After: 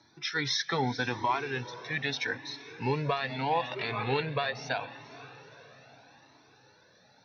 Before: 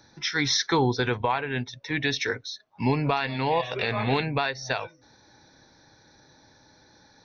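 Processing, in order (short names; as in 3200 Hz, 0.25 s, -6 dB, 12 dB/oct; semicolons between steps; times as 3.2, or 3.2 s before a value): BPF 130–5500 Hz; diffused feedback echo 0.473 s, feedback 52%, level -15.5 dB; cascading flanger rising 0.79 Hz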